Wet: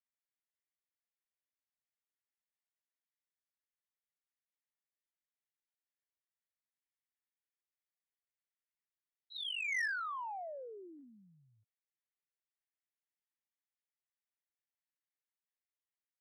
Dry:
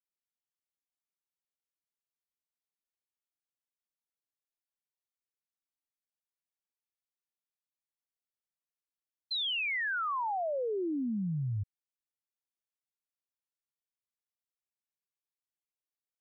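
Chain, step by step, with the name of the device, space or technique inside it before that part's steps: talking toy (LPC vocoder at 8 kHz pitch kept; high-pass 660 Hz 12 dB/octave; peaking EQ 1.9 kHz +11.5 dB 0.49 oct; saturation -23 dBFS, distortion -13 dB); trim -8 dB

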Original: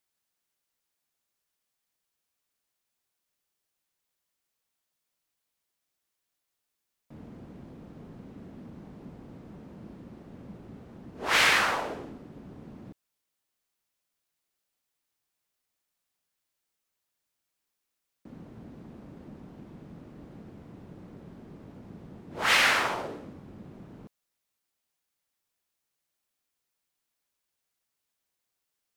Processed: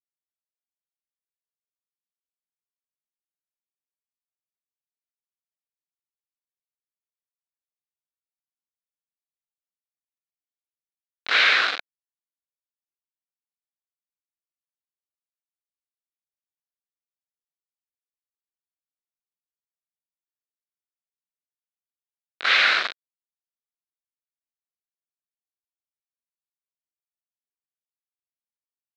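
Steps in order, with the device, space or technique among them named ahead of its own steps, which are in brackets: hand-held game console (bit crusher 4-bit; cabinet simulation 450–4500 Hz, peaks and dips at 910 Hz -9 dB, 1.5 kHz +7 dB, 2.3 kHz +4 dB, 3.9 kHz +9 dB)

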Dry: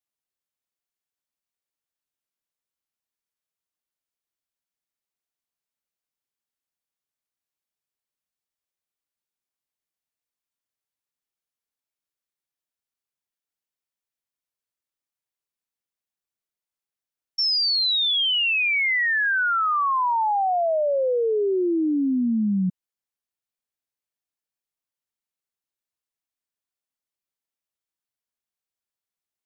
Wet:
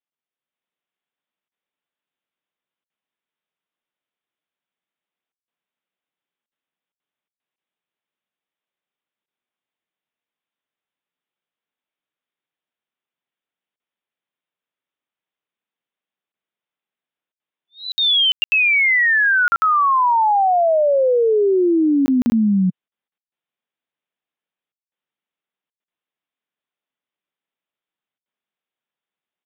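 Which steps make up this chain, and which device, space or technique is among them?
call with lost packets (high-pass 140 Hz 24 dB/octave; resampled via 8 kHz; level rider gain up to 6.5 dB; lost packets of 20 ms bursts)

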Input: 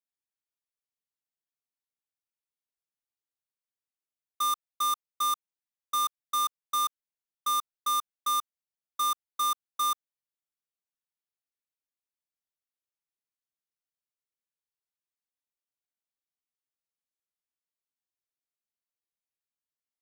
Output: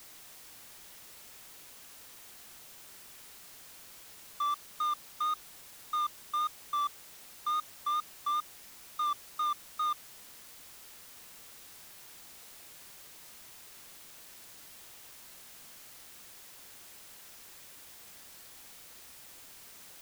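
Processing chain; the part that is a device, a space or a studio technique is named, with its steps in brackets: wax cylinder (band-pass 340–2600 Hz; wow and flutter; white noise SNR 11 dB); trim -3 dB

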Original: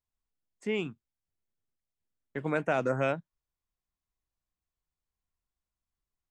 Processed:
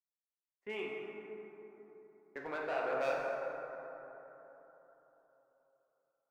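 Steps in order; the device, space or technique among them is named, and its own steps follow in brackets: walkie-talkie (band-pass 500–2400 Hz; hard clipper -28.5 dBFS, distortion -10 dB; gate -56 dBFS, range -18 dB); 2.52–2.93 s: tone controls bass -12 dB, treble -12 dB; plate-style reverb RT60 3.8 s, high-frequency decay 0.35×, DRR -3 dB; trim -5 dB

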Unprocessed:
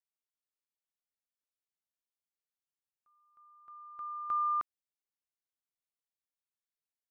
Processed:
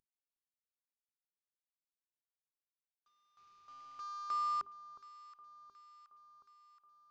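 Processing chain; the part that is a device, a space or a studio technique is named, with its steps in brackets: high-pass 92 Hz 12 dB/octave; early wireless headset (high-pass 170 Hz 6 dB/octave; CVSD coder 32 kbps); hum notches 50/100/150/200/250/300/350/400 Hz; echo whose repeats swap between lows and highs 362 ms, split 1.2 kHz, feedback 77%, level -14 dB; trim -4 dB

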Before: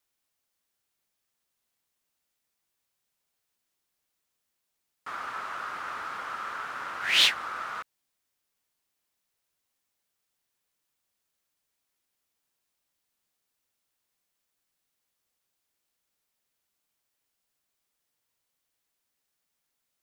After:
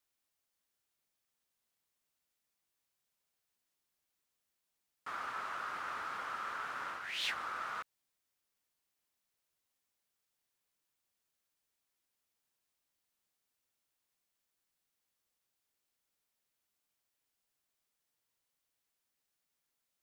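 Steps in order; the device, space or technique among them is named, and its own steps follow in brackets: compression on the reversed sound (reverse; compression 10:1, threshold -30 dBFS, peak gain reduction 14 dB; reverse); trim -4.5 dB

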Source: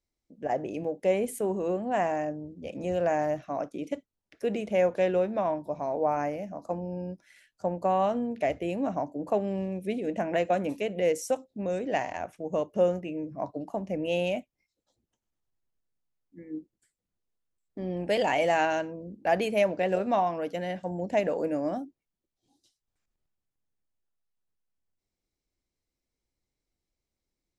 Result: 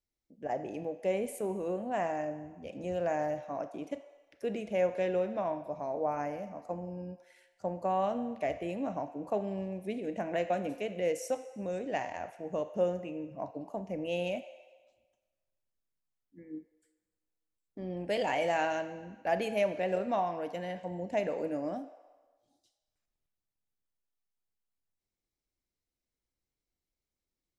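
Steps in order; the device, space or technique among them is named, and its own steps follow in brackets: filtered reverb send (on a send: high-pass 480 Hz 24 dB/octave + low-pass 8.9 kHz 12 dB/octave + reverberation RT60 1.3 s, pre-delay 28 ms, DRR 10.5 dB); on the sum: trim -5.5 dB

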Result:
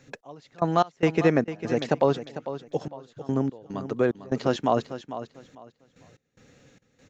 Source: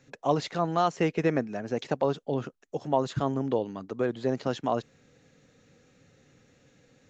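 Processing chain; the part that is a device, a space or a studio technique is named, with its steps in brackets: trance gate with a delay (trance gate "x..x.xx.xxx.." 73 bpm -24 dB; feedback delay 449 ms, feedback 23%, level -12 dB); trim +5 dB

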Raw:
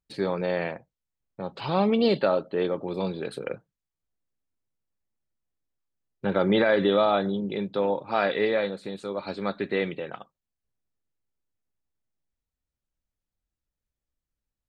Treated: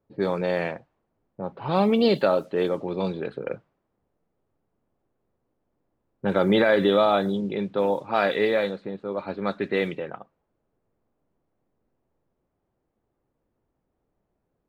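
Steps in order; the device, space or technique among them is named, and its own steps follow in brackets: cassette deck with a dynamic noise filter (white noise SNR 34 dB; level-controlled noise filter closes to 470 Hz, open at -21 dBFS); trim +2 dB

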